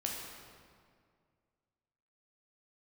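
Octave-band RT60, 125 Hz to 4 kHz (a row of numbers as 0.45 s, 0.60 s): 2.5 s, 2.3 s, 2.2 s, 2.0 s, 1.7 s, 1.4 s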